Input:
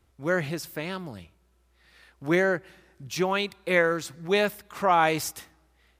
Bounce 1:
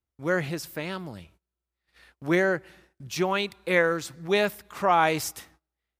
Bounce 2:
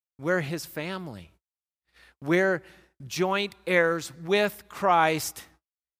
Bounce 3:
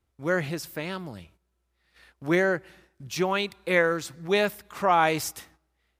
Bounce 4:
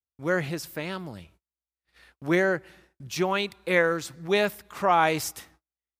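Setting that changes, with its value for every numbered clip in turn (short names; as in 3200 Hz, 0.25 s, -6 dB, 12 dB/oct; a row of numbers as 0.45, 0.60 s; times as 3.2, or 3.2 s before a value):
gate, range: -23, -53, -10, -38 dB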